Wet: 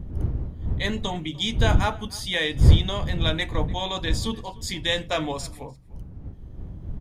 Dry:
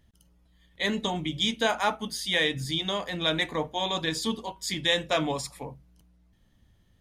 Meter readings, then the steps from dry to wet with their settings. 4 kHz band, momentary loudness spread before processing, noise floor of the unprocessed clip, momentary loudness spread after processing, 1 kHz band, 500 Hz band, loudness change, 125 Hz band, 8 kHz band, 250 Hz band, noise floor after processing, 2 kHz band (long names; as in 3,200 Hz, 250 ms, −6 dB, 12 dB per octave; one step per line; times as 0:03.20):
0.0 dB, 7 LU, −64 dBFS, 21 LU, 0.0 dB, +0.5 dB, +3.0 dB, +14.5 dB, 0.0 dB, +2.5 dB, −42 dBFS, 0.0 dB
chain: wind on the microphone 96 Hz −25 dBFS
slap from a distant wall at 51 metres, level −22 dB